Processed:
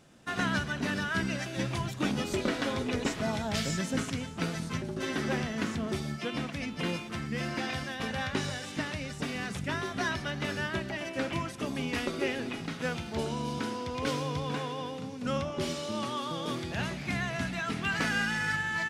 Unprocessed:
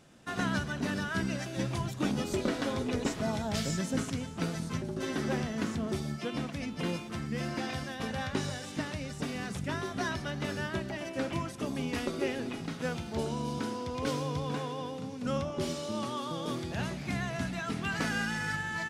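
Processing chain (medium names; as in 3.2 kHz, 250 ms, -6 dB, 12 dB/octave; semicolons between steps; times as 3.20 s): dynamic bell 2.3 kHz, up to +5 dB, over -51 dBFS, Q 0.72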